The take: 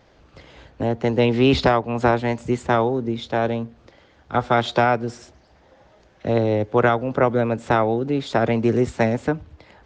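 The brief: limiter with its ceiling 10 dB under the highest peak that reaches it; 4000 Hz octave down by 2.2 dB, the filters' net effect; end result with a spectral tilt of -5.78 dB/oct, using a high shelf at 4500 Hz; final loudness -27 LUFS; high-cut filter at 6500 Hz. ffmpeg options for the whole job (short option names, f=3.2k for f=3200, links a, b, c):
-af "lowpass=6.5k,equalizer=f=4k:t=o:g=-4,highshelf=f=4.5k:g=3.5,volume=-1dB,alimiter=limit=-16.5dB:level=0:latency=1"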